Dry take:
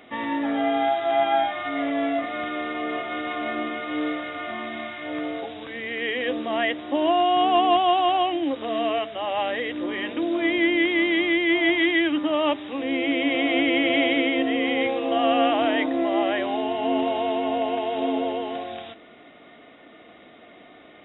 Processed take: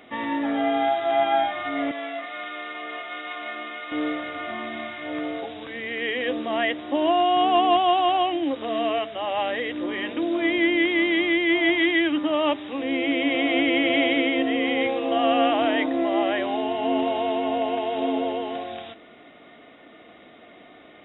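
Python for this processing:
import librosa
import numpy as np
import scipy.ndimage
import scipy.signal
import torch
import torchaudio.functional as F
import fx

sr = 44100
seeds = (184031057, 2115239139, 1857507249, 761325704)

y = fx.highpass(x, sr, hz=1300.0, slope=6, at=(1.91, 3.92))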